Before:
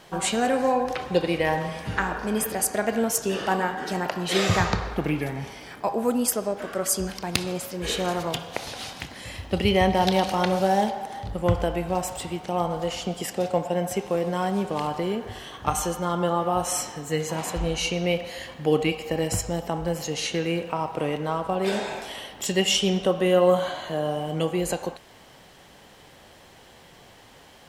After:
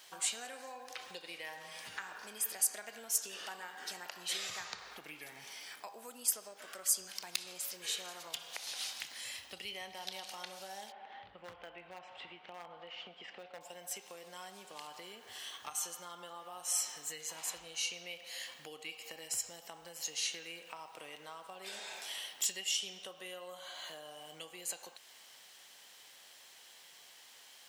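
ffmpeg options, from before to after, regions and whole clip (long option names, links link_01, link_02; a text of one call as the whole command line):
ffmpeg -i in.wav -filter_complex "[0:a]asettb=1/sr,asplit=3[link_01][link_02][link_03];[link_01]atrim=end=10.924[link_04];[link_02]atrim=start=10.92:end=13.61,asetpts=PTS-STARTPTS,afade=type=in:duration=0.004:curve=qsin,afade=type=out:start_time=2.686:duration=0.004:curve=qsin,lowpass=frequency=2900:width=0.5412,lowpass=frequency=2900:width=1.3066,volume=16.5dB,asoftclip=hard,volume=-16.5dB[link_05];[link_03]atrim=start=13.606[link_06];[link_04][link_05]acrossfade=duration=0.004:curve1=hsin:curve2=qsin[link_07];[link_07][link_06]acrossfade=duration=0.004:curve1=qsin:curve2=hsin,equalizer=frequency=13000:width=0.51:gain=-8,acompressor=threshold=-32dB:ratio=3,aderivative,volume=4.5dB" out.wav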